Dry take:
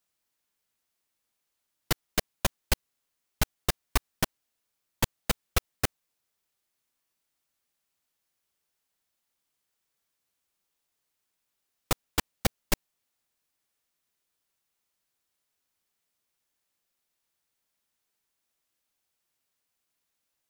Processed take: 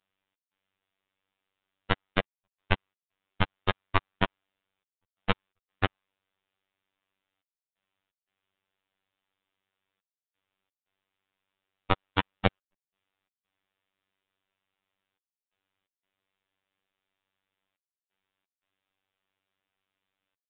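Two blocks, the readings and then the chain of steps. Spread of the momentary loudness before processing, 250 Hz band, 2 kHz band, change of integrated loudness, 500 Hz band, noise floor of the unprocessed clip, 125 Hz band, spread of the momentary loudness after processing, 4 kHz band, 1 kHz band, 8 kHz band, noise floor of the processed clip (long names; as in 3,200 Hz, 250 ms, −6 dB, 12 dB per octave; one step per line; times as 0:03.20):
4 LU, +1.5 dB, +2.5 dB, +0.5 dB, +2.0 dB, −82 dBFS, +1.0 dB, 4 LU, −2.0 dB, +4.5 dB, below −40 dB, below −85 dBFS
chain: dynamic equaliser 1,100 Hz, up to +4 dB, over −47 dBFS, Q 1.3
gate pattern "xx.xxxxxxxxxx.." 87 BPM −60 dB
phases set to zero 96.2 Hz
downsampling to 8,000 Hz
level +4.5 dB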